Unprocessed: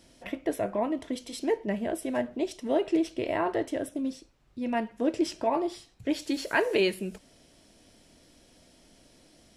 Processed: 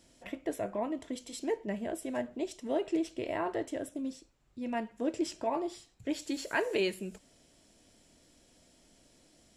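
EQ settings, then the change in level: peaking EQ 7.3 kHz +8.5 dB 0.24 oct; -5.5 dB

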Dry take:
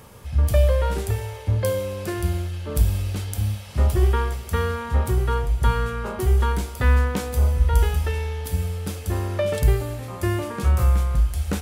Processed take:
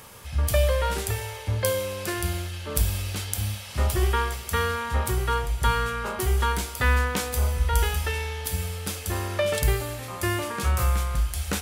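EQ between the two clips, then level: tilt shelf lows -5.5 dB, about 780 Hz; 0.0 dB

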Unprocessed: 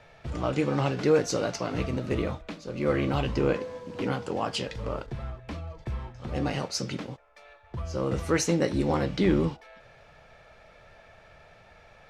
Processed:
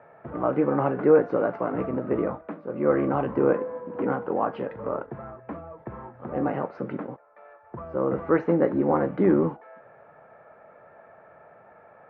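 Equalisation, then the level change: high-pass 220 Hz 12 dB/octave; low-pass 1.5 kHz 24 dB/octave; +5.0 dB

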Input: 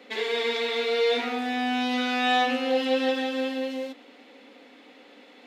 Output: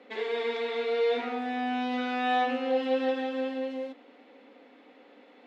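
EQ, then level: low-pass 1.1 kHz 6 dB/octave; bass shelf 240 Hz -7.5 dB; 0.0 dB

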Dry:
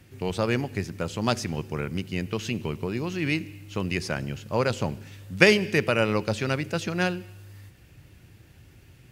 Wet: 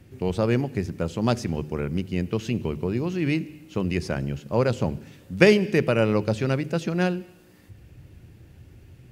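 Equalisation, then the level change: bass shelf 230 Hz +10.5 dB; peaking EQ 470 Hz +5 dB 2.1 oct; hum notches 50/100/150 Hz; -4.0 dB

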